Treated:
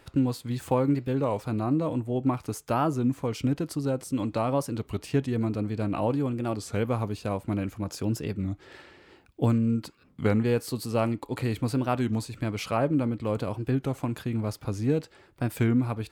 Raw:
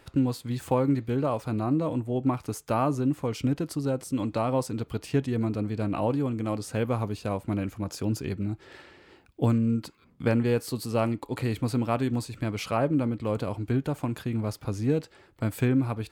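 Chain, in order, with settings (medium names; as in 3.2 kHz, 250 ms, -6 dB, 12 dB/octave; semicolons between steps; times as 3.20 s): warped record 33 1/3 rpm, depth 160 cents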